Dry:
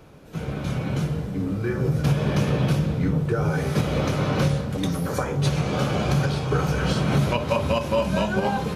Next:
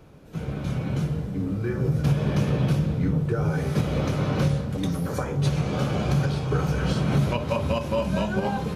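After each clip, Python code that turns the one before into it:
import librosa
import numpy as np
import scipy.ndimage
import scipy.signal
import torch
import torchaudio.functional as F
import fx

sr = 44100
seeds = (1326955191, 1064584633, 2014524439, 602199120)

y = fx.low_shelf(x, sr, hz=360.0, db=4.5)
y = y * 10.0 ** (-4.5 / 20.0)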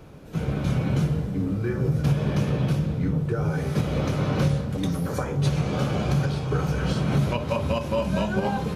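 y = fx.rider(x, sr, range_db=5, speed_s=2.0)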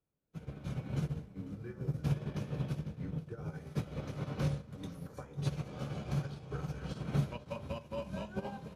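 y = x + 10.0 ** (-11.5 / 20.0) * np.pad(x, (int(500 * sr / 1000.0), 0))[:len(x)]
y = fx.upward_expand(y, sr, threshold_db=-41.0, expansion=2.5)
y = y * 10.0 ** (-8.0 / 20.0)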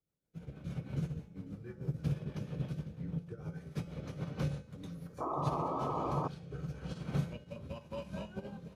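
y = fx.rotary_switch(x, sr, hz=6.3, then_hz=1.0, switch_at_s=5.67)
y = fx.comb_fb(y, sr, f0_hz=170.0, decay_s=0.63, harmonics='odd', damping=0.0, mix_pct=70)
y = fx.spec_paint(y, sr, seeds[0], shape='noise', start_s=5.2, length_s=1.08, low_hz=240.0, high_hz=1300.0, level_db=-45.0)
y = y * 10.0 ** (9.0 / 20.0)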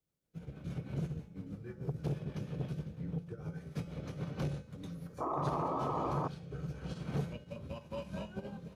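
y = fx.transformer_sat(x, sr, knee_hz=450.0)
y = y * 10.0 ** (1.0 / 20.0)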